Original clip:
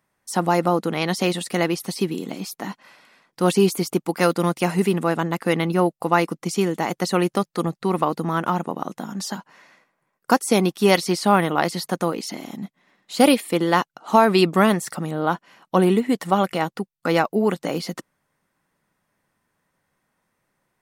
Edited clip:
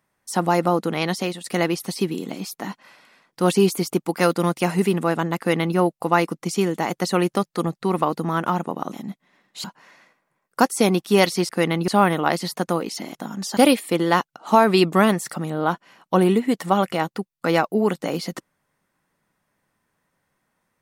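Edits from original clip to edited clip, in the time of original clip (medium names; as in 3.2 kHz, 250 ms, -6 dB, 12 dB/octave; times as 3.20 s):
1.06–1.44 s: fade out, to -12 dB
5.38–5.77 s: copy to 11.20 s
8.93–9.35 s: swap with 12.47–13.18 s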